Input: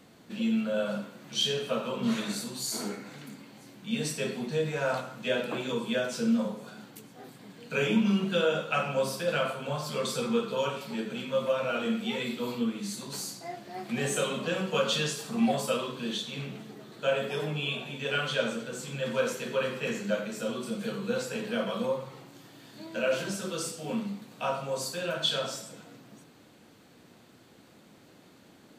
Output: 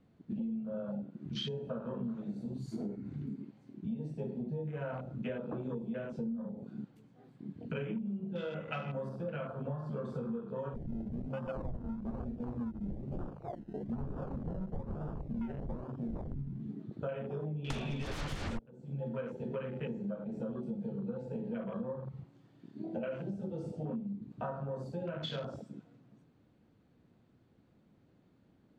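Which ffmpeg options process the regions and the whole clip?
-filter_complex "[0:a]asettb=1/sr,asplit=3[a][b][c];[a]atrim=end=8.384[d];[b]atrim=start=8.38:end=9.09,asetpts=PTS-STARTPTS,afade=t=in:d=0.004:c=qsin,afade=t=out:st=0.706:d=0.004:c=qsin,aeval=exprs='val(0)+0.00501*sin(2*PI*2000*n/s)':c=same,highshelf=f=3.1k:g=8.5[e];[c]atrim=start=9.086[f];[d][e]acrossfade=d=0.004:c1=hsin:c2=qsin[g];[g][f]acrossfade=d=0.004:c1=qsin:c2=hsin,asettb=1/sr,asplit=3[h][i][j];[h]atrim=end=10.744[k];[i]atrim=start=10.74:end=16.62,asetpts=PTS-STARTPTS,afade=t=in:d=0.004:c=qsin,afade=t=out:st=5.876:d=0.004:c=qsin,equalizer=f=440:w=1.4:g=-6.5,acrusher=samples=30:mix=1:aa=0.000001:lfo=1:lforange=18:lforate=1.1[l];[j]atrim=start=16.616[m];[k][l]acrossfade=d=0.004:c1=hsin:c2=qsin[n];[n][m]acrossfade=d=0.004:c1=qsin:c2=hsin,asettb=1/sr,asplit=3[o][p][q];[o]atrim=end=17.704[r];[p]atrim=start=17.7:end=18.59,asetpts=PTS-STARTPTS,afade=t=in:d=0.004:c=qsin,afade=t=out:st=0.886:d=0.004:c=qsin,highshelf=f=2.8k:g=3,aeval=exprs='0.211*sin(PI/2*10*val(0)/0.211)':c=same[s];[q]atrim=start=18.586[t];[r][s]acrossfade=d=0.004:c1=hsin:c2=qsin[u];[u][t]acrossfade=d=0.004:c1=qsin:c2=hsin,afwtdn=0.0178,aemphasis=mode=reproduction:type=riaa,acompressor=threshold=-35dB:ratio=12"

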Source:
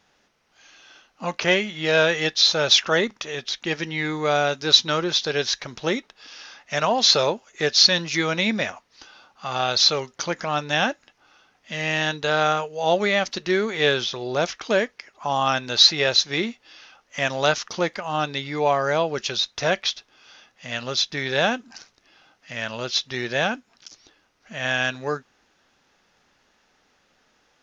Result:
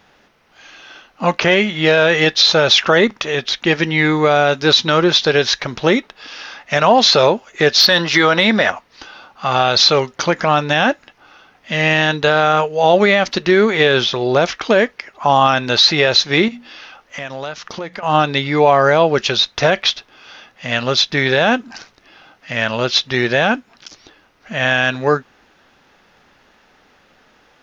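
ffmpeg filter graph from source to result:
-filter_complex "[0:a]asettb=1/sr,asplit=3[a][b][c];[a]atrim=end=7.804[d];[b]atrim=start=7.8:end=8.71,asetpts=PTS-STARTPTS,afade=t=in:d=0.004:c=qsin,afade=t=out:st=0.906:d=0.004:c=qsin,equalizer=f=2.4k:t=o:w=0.25:g=-9.5,bandreject=f=6.5k:w=11,asplit=2[e][f];[f]highpass=f=720:p=1,volume=11dB,asoftclip=type=tanh:threshold=-2dB[g];[e][g]amix=inputs=2:normalize=0,lowpass=f=4.2k:p=1,volume=-6dB[h];[c]atrim=start=8.706[i];[d][h]acrossfade=d=0.004:c1=hsin:c2=qsin[j];[j][i]acrossfade=d=0.004:c1=qsin:c2=hsin,asettb=1/sr,asplit=3[k][l][m];[k]atrim=end=16.484[n];[l]atrim=start=16.48:end=18.03,asetpts=PTS-STARTPTS,afade=t=in:d=0.004:c=qsin,afade=t=out:st=1.546:d=0.004:c=qsin,bandreject=f=60:t=h:w=6,bandreject=f=120:t=h:w=6,bandreject=f=180:t=h:w=6,bandreject=f=240:t=h:w=6,acompressor=threshold=-37dB:ratio=4:attack=3.2:release=140:knee=1:detection=peak[o];[m]atrim=start=18.026[p];[n][o]acrossfade=d=0.004:c1=hsin:c2=qsin[q];[q][p]acrossfade=d=0.004:c1=qsin:c2=hsin,equalizer=f=6.6k:w=0.96:g=-8.5,alimiter=level_in=13dB:limit=-1dB:release=50:level=0:latency=1,volume=-1dB"

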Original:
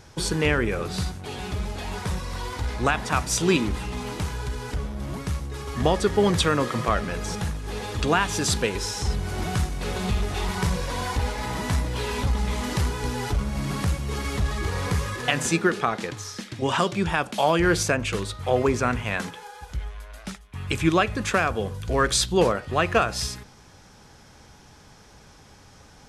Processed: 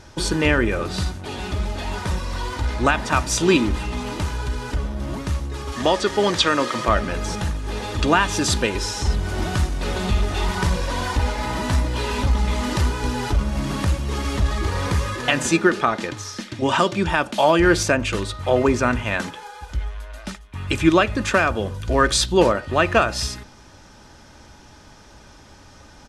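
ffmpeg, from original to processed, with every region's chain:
-filter_complex "[0:a]asettb=1/sr,asplit=3[a][b][c];[a]atrim=end=5.724[d];[b]atrim=start=5.72:end=6.85,asetpts=PTS-STARTPTS,afade=t=in:d=0.004:c=qsin,afade=t=out:st=1.126:d=0.004:c=qsin,lowpass=7.7k,aemphasis=mode=production:type=bsi,acrossover=split=6100[e][f];[f]acompressor=threshold=-43dB:ratio=4:attack=1:release=60[g];[e][g]amix=inputs=2:normalize=0[h];[c]atrim=start=6.846[i];[d][h]acrossfade=d=0.004:c1=hsin:c2=qsin[j];[j][i]acrossfade=d=0.004:c1=qsin:c2=hsin,highshelf=f=11k:g=-10.5,bandreject=f=2.2k:w=28,aecho=1:1:3.3:0.35,volume=4dB"

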